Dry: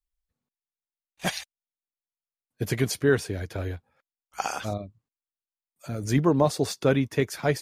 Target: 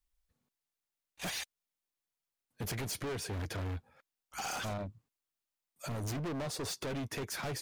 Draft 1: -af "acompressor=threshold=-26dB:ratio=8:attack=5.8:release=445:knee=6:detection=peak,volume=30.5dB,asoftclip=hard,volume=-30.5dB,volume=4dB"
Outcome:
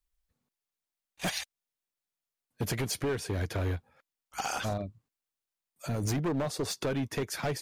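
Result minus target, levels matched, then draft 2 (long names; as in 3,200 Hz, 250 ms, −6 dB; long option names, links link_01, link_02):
gain into a clipping stage and back: distortion −6 dB
-af "acompressor=threshold=-26dB:ratio=8:attack=5.8:release=445:knee=6:detection=peak,volume=39.5dB,asoftclip=hard,volume=-39.5dB,volume=4dB"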